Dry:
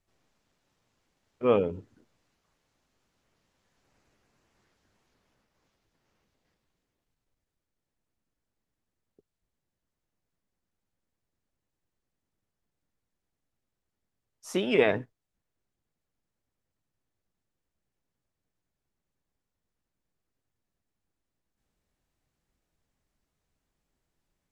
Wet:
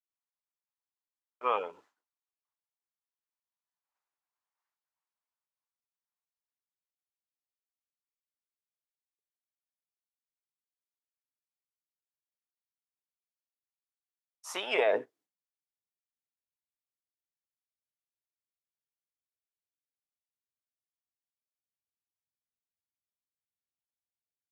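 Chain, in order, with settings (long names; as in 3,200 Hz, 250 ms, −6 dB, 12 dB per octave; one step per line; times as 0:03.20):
high-pass filter sweep 950 Hz → 90 Hz, 0:14.66–0:15.75
downward expander −56 dBFS
brickwall limiter −16.5 dBFS, peak gain reduction 7 dB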